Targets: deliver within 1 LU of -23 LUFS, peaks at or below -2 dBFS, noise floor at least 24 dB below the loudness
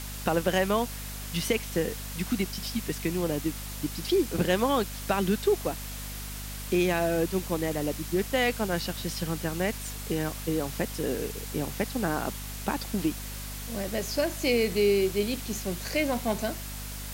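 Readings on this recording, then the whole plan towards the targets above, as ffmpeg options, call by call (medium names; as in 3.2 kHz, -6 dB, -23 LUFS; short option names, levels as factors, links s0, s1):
hum 50 Hz; highest harmonic 250 Hz; hum level -37 dBFS; noise floor -38 dBFS; noise floor target -53 dBFS; loudness -29.0 LUFS; peak level -10.0 dBFS; loudness target -23.0 LUFS
-> -af "bandreject=f=50:t=h:w=6,bandreject=f=100:t=h:w=6,bandreject=f=150:t=h:w=6,bandreject=f=200:t=h:w=6,bandreject=f=250:t=h:w=6"
-af "afftdn=nr=15:nf=-38"
-af "volume=2"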